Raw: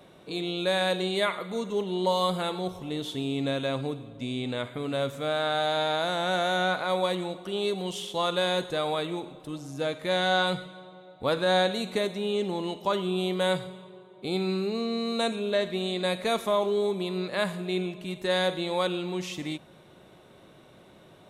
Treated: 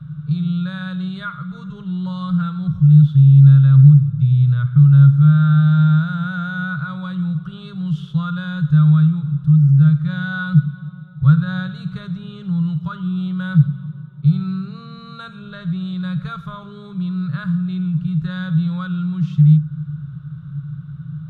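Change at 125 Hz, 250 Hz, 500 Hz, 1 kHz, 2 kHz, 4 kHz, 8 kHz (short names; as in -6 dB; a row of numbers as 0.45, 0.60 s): +26.0 dB, +14.0 dB, under -15 dB, -3.5 dB, +2.0 dB, n/a, under -15 dB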